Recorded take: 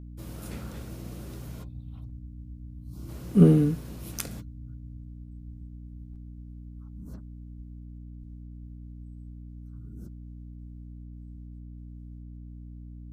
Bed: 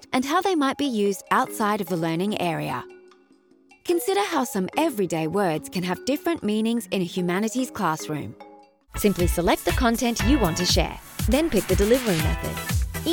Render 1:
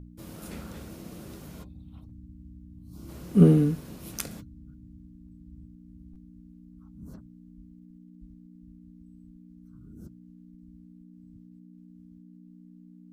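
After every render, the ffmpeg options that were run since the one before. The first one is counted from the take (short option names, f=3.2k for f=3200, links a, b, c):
-af "bandreject=f=60:t=h:w=4,bandreject=f=120:t=h:w=4"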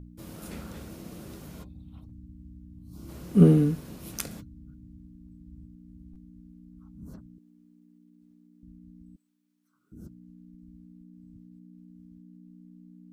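-filter_complex "[0:a]asettb=1/sr,asplit=3[a][b][c];[a]atrim=end=7.384[d];[b]atrim=start=7.38:end=8.63,asetpts=PTS-STARTPTS,afade=t=in:d=0.004:c=qsin,afade=t=out:st=1.246:d=0.004:c=qsin,highpass=330[e];[c]atrim=start=8.626[f];[d][e]acrossfade=d=0.004:c1=hsin:c2=qsin[g];[g][f]acrossfade=d=0.004:c1=qsin:c2=hsin,asettb=1/sr,asplit=3[h][i][j];[h]atrim=end=9.164[k];[i]atrim=start=9.16:end=9.92,asetpts=PTS-STARTPTS,afade=t=in:d=0.004:c=qsin,afade=t=out:st=0.756:d=0.004:c=qsin,highpass=950[l];[j]atrim=start=9.916[m];[k][l]acrossfade=d=0.004:c1=hsin:c2=qsin[n];[n][m]acrossfade=d=0.004:c1=qsin:c2=hsin"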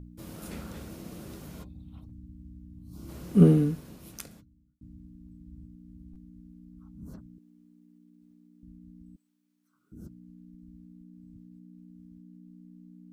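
-filter_complex "[0:a]asplit=2[a][b];[a]atrim=end=4.81,asetpts=PTS-STARTPTS,afade=t=out:st=3.29:d=1.52[c];[b]atrim=start=4.81,asetpts=PTS-STARTPTS,afade=t=in:d=0.004:c=hsin[d];[c][d]concat=n=2:v=0:a=1"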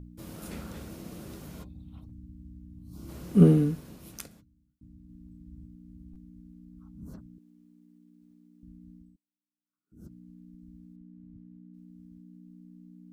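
-filter_complex "[0:a]asettb=1/sr,asplit=3[a][b][c];[a]atrim=end=10.964[d];[b]atrim=start=10.96:end=11.74,asetpts=PTS-STARTPTS,afade=t=in:d=0.004:c=qsin,afade=t=out:st=0.776:d=0.004:c=qsin,lowpass=2.4k[e];[c]atrim=start=11.736[f];[d][e]acrossfade=d=0.004:c1=hsin:c2=qsin[g];[g][f]acrossfade=d=0.004:c1=qsin:c2=hsin,asplit=5[h][i][j][k][l];[h]atrim=end=4.272[m];[i]atrim=start=4.268:end=5.092,asetpts=PTS-STARTPTS,volume=-3.5dB[n];[j]atrim=start=5.088:end=9.21,asetpts=PTS-STARTPTS,afade=t=out:st=3.852:d=0.27:silence=0.0794328[o];[k]atrim=start=9.21:end=9.86,asetpts=PTS-STARTPTS,volume=-22dB[p];[l]atrim=start=9.86,asetpts=PTS-STARTPTS,afade=t=in:d=0.27:silence=0.0794328[q];[m][n]acrossfade=d=0.004:c1=hsin:c2=hsin[r];[o][p][q]concat=n=3:v=0:a=1[s];[r][s]acrossfade=d=0.004:c1=hsin:c2=hsin"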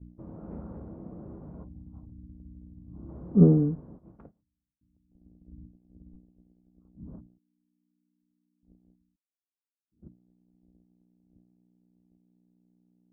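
-af "agate=range=-19dB:threshold=-47dB:ratio=16:detection=peak,lowpass=f=1k:w=0.5412,lowpass=f=1k:w=1.3066"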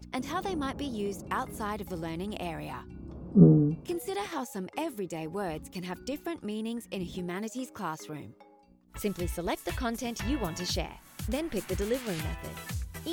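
-filter_complex "[1:a]volume=-11.5dB[a];[0:a][a]amix=inputs=2:normalize=0"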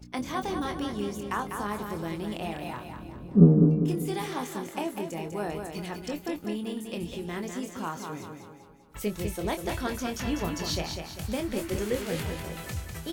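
-filter_complex "[0:a]asplit=2[a][b];[b]adelay=24,volume=-7.5dB[c];[a][c]amix=inputs=2:normalize=0,aecho=1:1:198|396|594|792|990:0.501|0.226|0.101|0.0457|0.0206"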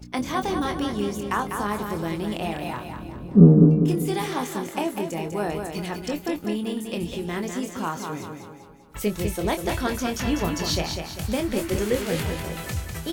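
-af "volume=5.5dB,alimiter=limit=-2dB:level=0:latency=1"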